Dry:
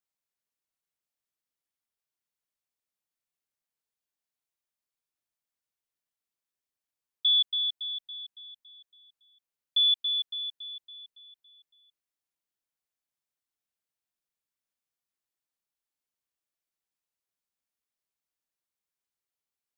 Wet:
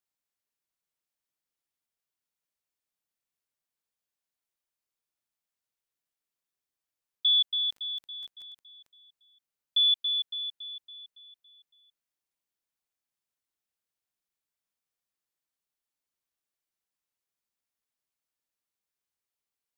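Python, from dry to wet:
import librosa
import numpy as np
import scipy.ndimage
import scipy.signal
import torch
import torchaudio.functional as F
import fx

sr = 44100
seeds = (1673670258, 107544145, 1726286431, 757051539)

y = fx.dmg_crackle(x, sr, seeds[0], per_s=12.0, level_db=-40.0, at=(7.31, 8.93), fade=0.02)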